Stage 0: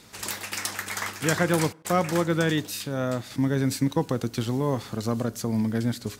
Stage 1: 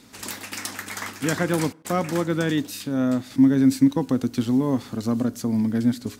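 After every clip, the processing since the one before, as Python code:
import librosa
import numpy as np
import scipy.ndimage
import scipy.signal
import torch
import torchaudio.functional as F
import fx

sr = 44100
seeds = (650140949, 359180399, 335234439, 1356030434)

y = fx.peak_eq(x, sr, hz=260.0, db=12.5, octaves=0.38)
y = y * librosa.db_to_amplitude(-1.5)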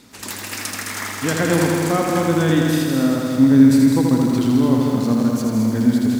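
y = x + 10.0 ** (-6.0 / 20.0) * np.pad(x, (int(211 * sr / 1000.0), 0))[:len(x)]
y = fx.echo_crushed(y, sr, ms=81, feedback_pct=80, bits=8, wet_db=-4)
y = y * librosa.db_to_amplitude(2.5)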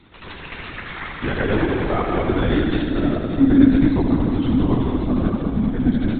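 y = fx.lpc_vocoder(x, sr, seeds[0], excitation='whisper', order=16)
y = y * librosa.db_to_amplitude(-2.0)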